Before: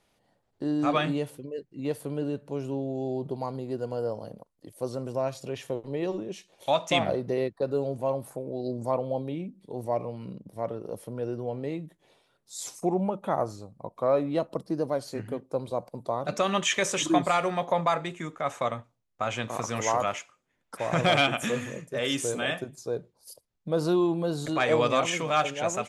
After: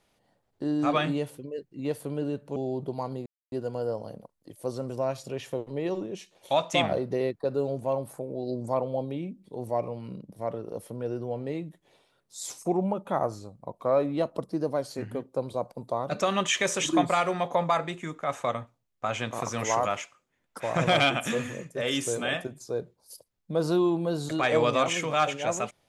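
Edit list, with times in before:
0:02.56–0:02.99: remove
0:03.69: splice in silence 0.26 s

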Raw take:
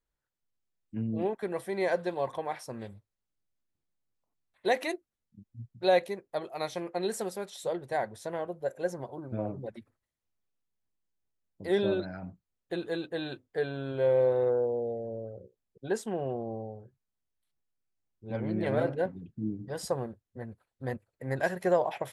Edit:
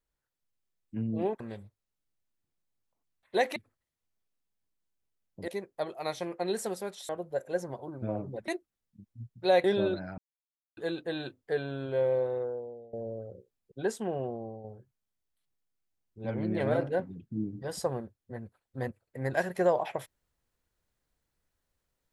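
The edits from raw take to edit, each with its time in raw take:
0:01.40–0:02.71: remove
0:04.87–0:06.03: swap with 0:09.78–0:11.70
0:07.64–0:08.39: remove
0:12.24–0:12.83: silence
0:13.75–0:14.99: fade out, to −20.5 dB
0:16.20–0:16.70: fade out, to −6.5 dB

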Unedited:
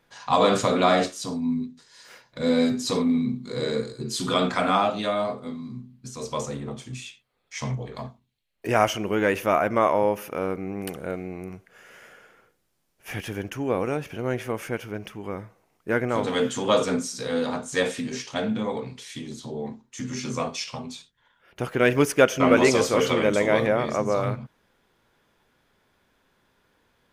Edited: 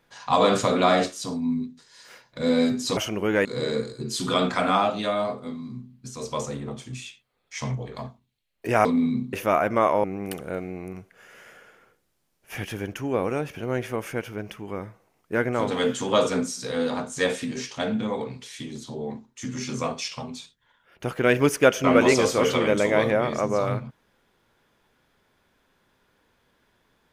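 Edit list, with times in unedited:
0:02.97–0:03.45: swap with 0:08.85–0:09.33
0:10.04–0:10.60: remove

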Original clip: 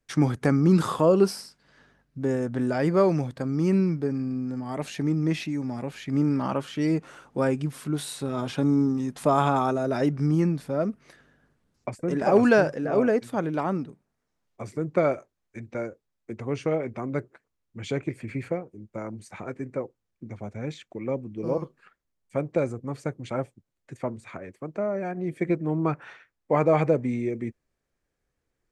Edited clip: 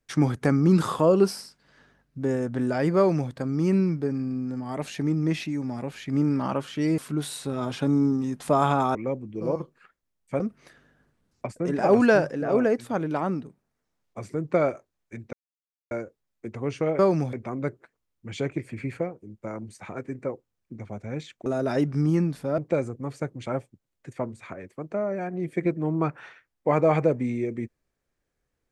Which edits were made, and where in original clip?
0:02.97–0:03.31: duplicate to 0:16.84
0:06.98–0:07.74: remove
0:09.71–0:10.83: swap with 0:20.97–0:22.42
0:15.76: splice in silence 0.58 s

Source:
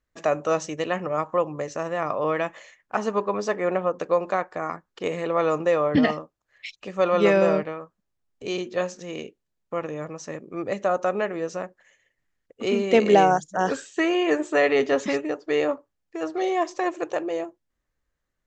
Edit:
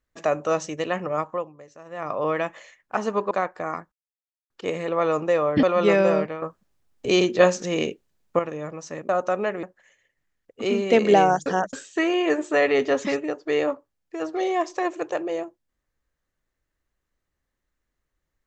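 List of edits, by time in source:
0:01.19–0:02.19: duck −16 dB, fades 0.34 s
0:03.31–0:04.27: remove
0:04.88: splice in silence 0.58 s
0:06.01–0:07.00: remove
0:07.79–0:09.76: clip gain +9.5 dB
0:10.46–0:10.85: remove
0:11.39–0:11.64: remove
0:13.47–0:13.74: reverse

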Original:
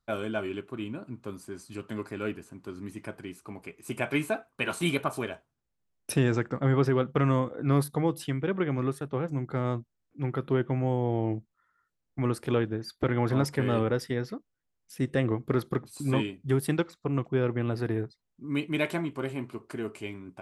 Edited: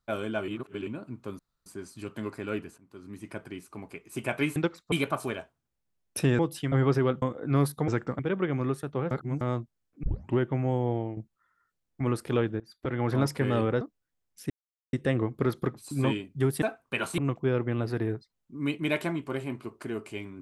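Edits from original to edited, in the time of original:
0:00.48–0:00.87: reverse
0:01.39: splice in room tone 0.27 s
0:02.51–0:03.07: fade in, from −17.5 dB
0:04.29–0:04.85: swap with 0:16.71–0:17.07
0:06.32–0:06.63: swap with 0:08.04–0:08.37
0:07.13–0:07.38: remove
0:09.29–0:09.59: reverse
0:10.21: tape start 0.35 s
0:11.08–0:11.35: fade out, to −12 dB
0:12.78–0:13.32: fade in, from −20.5 dB
0:13.99–0:14.33: remove
0:15.02: splice in silence 0.43 s

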